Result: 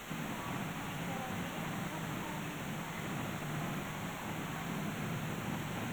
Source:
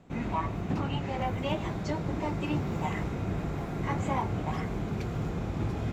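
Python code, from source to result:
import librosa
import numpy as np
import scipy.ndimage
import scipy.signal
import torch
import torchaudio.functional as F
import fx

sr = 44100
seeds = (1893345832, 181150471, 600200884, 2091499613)

p1 = scipy.signal.sosfilt(scipy.signal.butter(4, 150.0, 'highpass', fs=sr, output='sos'), x)
p2 = fx.peak_eq(p1, sr, hz=450.0, db=-12.5, octaves=1.3)
p3 = fx.over_compress(p2, sr, threshold_db=-42.0, ratio=-1.0)
p4 = fx.quant_dither(p3, sr, seeds[0], bits=6, dither='triangular')
p5 = np.convolve(p4, np.full(9, 1.0 / 9))[:len(p4)]
p6 = p5 + fx.echo_single(p5, sr, ms=81, db=-3.5, dry=0)
y = F.gain(torch.from_numpy(p6), -1.0).numpy()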